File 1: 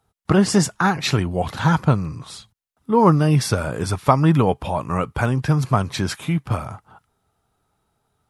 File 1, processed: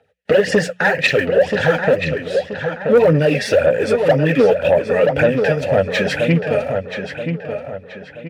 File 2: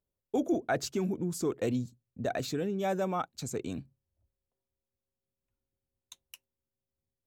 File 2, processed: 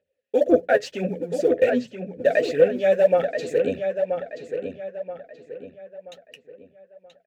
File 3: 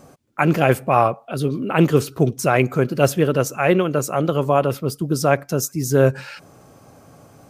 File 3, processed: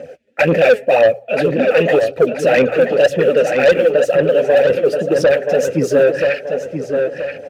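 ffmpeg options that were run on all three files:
-filter_complex "[0:a]asplit=3[s0][s1][s2];[s0]bandpass=f=530:t=q:w=8,volume=1[s3];[s1]bandpass=f=1840:t=q:w=8,volume=0.501[s4];[s2]bandpass=f=2480:t=q:w=8,volume=0.355[s5];[s3][s4][s5]amix=inputs=3:normalize=0,bandreject=f=1100:w=12,aphaser=in_gain=1:out_gain=1:delay=4.9:decay=0.63:speed=1.9:type=sinusoidal,equalizer=f=360:t=o:w=0.25:g=-8.5,asplit=2[s6][s7];[s7]adelay=12,volume=0.282[s8];[s6][s8]amix=inputs=2:normalize=0,asplit=2[s9][s10];[s10]acompressor=threshold=0.0224:ratio=6,volume=0.944[s11];[s9][s11]amix=inputs=2:normalize=0,asoftclip=type=tanh:threshold=0.112,highpass=46,lowshelf=f=130:g=6,bandreject=f=60:t=h:w=6,bandreject=f=120:t=h:w=6,bandreject=f=180:t=h:w=6,asplit=2[s12][s13];[s13]adelay=979,lowpass=f=3700:p=1,volume=0.447,asplit=2[s14][s15];[s15]adelay=979,lowpass=f=3700:p=1,volume=0.39,asplit=2[s16][s17];[s17]adelay=979,lowpass=f=3700:p=1,volume=0.39,asplit=2[s18][s19];[s19]adelay=979,lowpass=f=3700:p=1,volume=0.39,asplit=2[s20][s21];[s21]adelay=979,lowpass=f=3700:p=1,volume=0.39[s22];[s14][s16][s18][s20][s22]amix=inputs=5:normalize=0[s23];[s12][s23]amix=inputs=2:normalize=0,alimiter=level_in=9.44:limit=0.891:release=50:level=0:latency=1,volume=0.596"

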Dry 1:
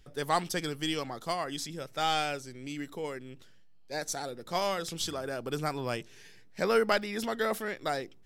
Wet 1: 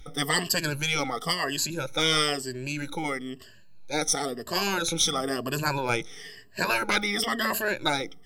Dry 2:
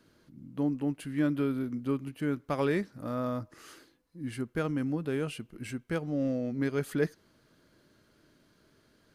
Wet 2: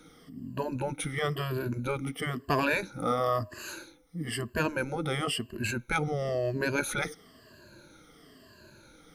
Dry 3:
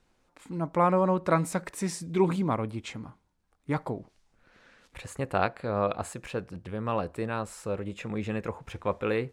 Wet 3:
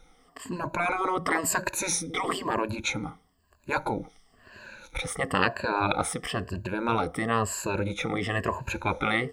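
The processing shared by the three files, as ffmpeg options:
-af "afftfilt=real='re*pow(10,18/40*sin(2*PI*(1.4*log(max(b,1)*sr/1024/100)/log(2)-(-1)*(pts-256)/sr)))':imag='im*pow(10,18/40*sin(2*PI*(1.4*log(max(b,1)*sr/1024/100)/log(2)-(-1)*(pts-256)/sr)))':win_size=1024:overlap=0.75,afftfilt=real='re*lt(hypot(re,im),0.2)':imag='im*lt(hypot(re,im),0.2)':win_size=1024:overlap=0.75,equalizer=f=190:w=0.63:g=-2.5,volume=2.37"

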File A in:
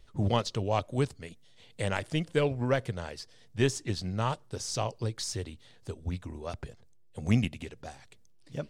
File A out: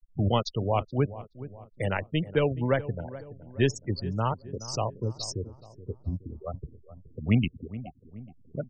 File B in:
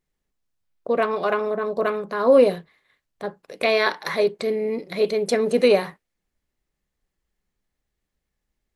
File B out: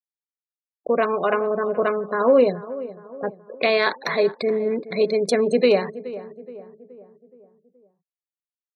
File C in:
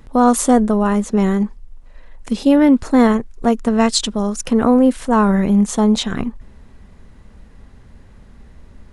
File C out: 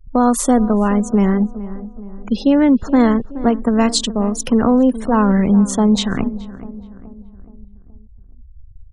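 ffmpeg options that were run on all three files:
-filter_complex "[0:a]anlmdn=2.51,afftfilt=real='re*gte(hypot(re,im),0.0251)':imag='im*gte(hypot(re,im),0.0251)':win_size=1024:overlap=0.75,acrossover=split=190[s0][s1];[s1]acompressor=threshold=0.0891:ratio=1.5[s2];[s0][s2]amix=inputs=2:normalize=0,asplit=2[s3][s4];[s4]adelay=423,lowpass=f=1200:p=1,volume=0.178,asplit=2[s5][s6];[s6]adelay=423,lowpass=f=1200:p=1,volume=0.52,asplit=2[s7][s8];[s8]adelay=423,lowpass=f=1200:p=1,volume=0.52,asplit=2[s9][s10];[s10]adelay=423,lowpass=f=1200:p=1,volume=0.52,asplit=2[s11][s12];[s12]adelay=423,lowpass=f=1200:p=1,volume=0.52[s13];[s3][s5][s7][s9][s11][s13]amix=inputs=6:normalize=0,volume=1.33"

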